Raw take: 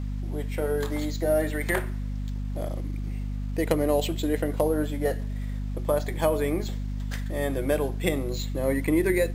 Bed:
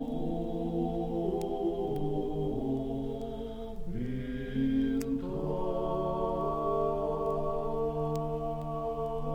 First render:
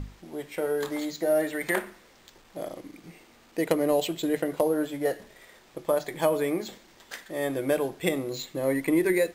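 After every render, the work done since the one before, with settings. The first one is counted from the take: notches 50/100/150/200/250 Hz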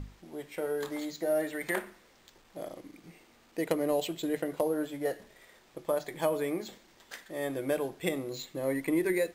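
gain -5 dB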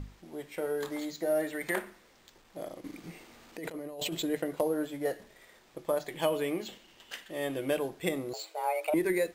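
2.84–4.23 negative-ratio compressor -38 dBFS; 6.09–7.79 bell 2900 Hz +13.5 dB 0.27 oct; 8.33–8.94 frequency shift +300 Hz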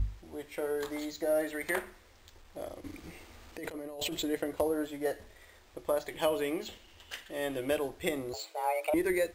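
resonant low shelf 110 Hz +10 dB, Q 3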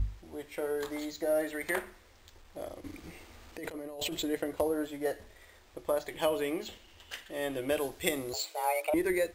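7.77–8.82 high shelf 2800 Hz +8.5 dB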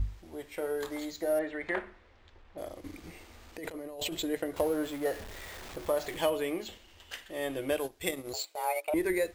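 1.39–2.58 LPF 2900 Hz; 4.56–6.3 zero-crossing step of -40.5 dBFS; 7.76–8.96 transient shaper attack -3 dB, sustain -12 dB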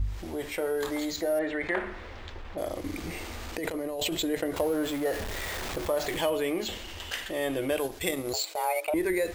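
fast leveller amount 50%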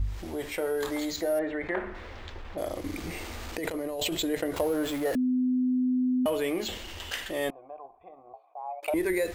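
1.4–1.95 high shelf 2600 Hz -11 dB; 5.15–6.26 bleep 253 Hz -22.5 dBFS; 7.5–8.83 vocal tract filter a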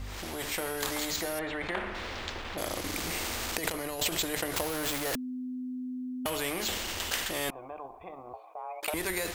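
AGC gain up to 3.5 dB; spectral compressor 2:1

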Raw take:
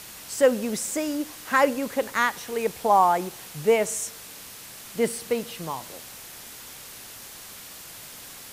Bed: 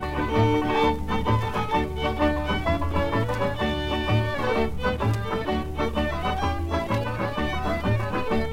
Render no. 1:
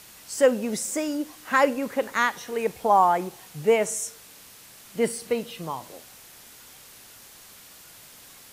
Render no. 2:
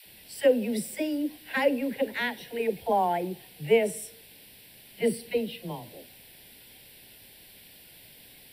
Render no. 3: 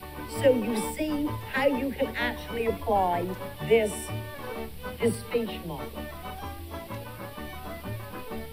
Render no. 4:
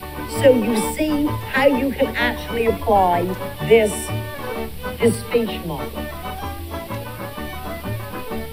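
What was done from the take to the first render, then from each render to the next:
noise print and reduce 6 dB
fixed phaser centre 2900 Hz, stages 4; dispersion lows, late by 62 ms, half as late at 490 Hz
add bed -12.5 dB
gain +9 dB; limiter -2 dBFS, peak gain reduction 1 dB

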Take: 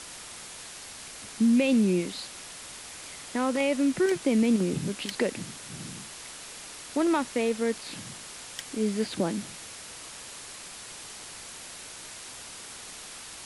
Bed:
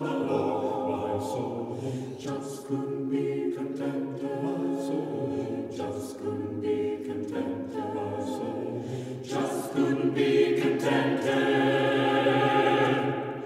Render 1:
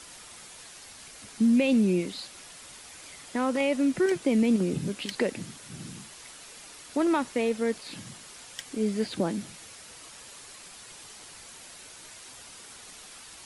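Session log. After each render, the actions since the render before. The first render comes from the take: denoiser 6 dB, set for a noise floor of -44 dBFS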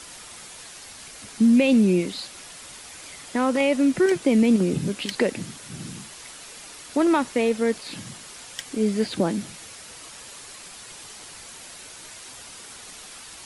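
gain +5 dB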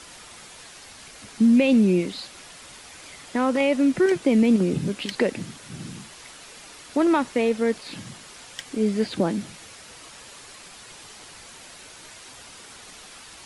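high shelf 7100 Hz -7.5 dB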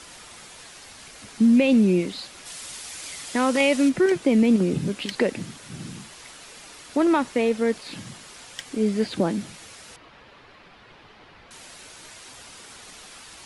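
2.45–3.88 high shelf 3600 Hz -> 2400 Hz +10.5 dB; 9.96–11.51 air absorption 340 m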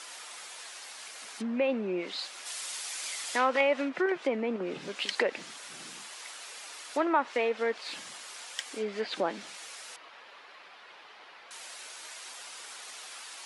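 treble ducked by the level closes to 1600 Hz, closed at -15 dBFS; HPF 630 Hz 12 dB/oct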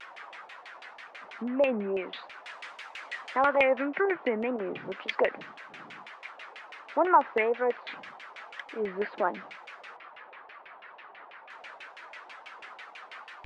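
wow and flutter 140 cents; LFO low-pass saw down 6.1 Hz 660–2700 Hz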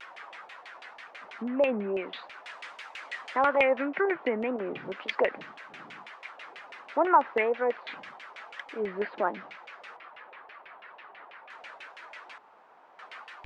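6.43–6.88 frequency shift -59 Hz; 9.05–9.82 air absorption 54 m; 12.38–12.99 room tone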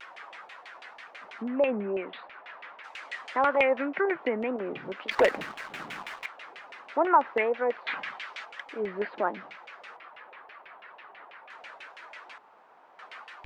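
1.6–2.83 LPF 3400 Hz -> 2100 Hz; 5.11–6.26 sample leveller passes 2; 7.86–8.44 bell 1300 Hz -> 5600 Hz +10 dB 2.5 oct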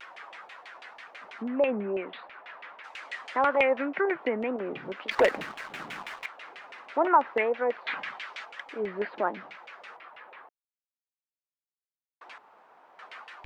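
6.35–7.08 flutter echo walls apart 10.2 m, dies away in 0.25 s; 10.49–12.21 mute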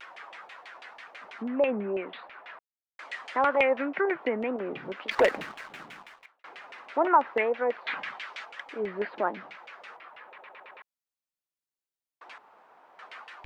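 2.59–2.99 mute; 5.3–6.44 fade out; 10.27 stutter in place 0.11 s, 5 plays

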